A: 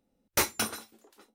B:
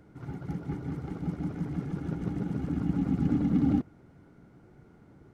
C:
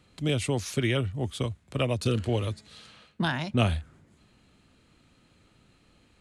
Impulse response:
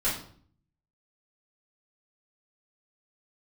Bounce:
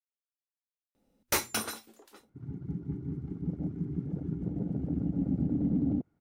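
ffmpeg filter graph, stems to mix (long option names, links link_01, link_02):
-filter_complex "[0:a]bandreject=frequency=121.5:width_type=h:width=4,bandreject=frequency=243:width_type=h:width=4,adelay=950,volume=2.5dB[link_01];[1:a]afwtdn=0.0251,adelay=2200,volume=-1dB[link_02];[link_01][link_02]amix=inputs=2:normalize=0,alimiter=limit=-20.5dB:level=0:latency=1:release=121"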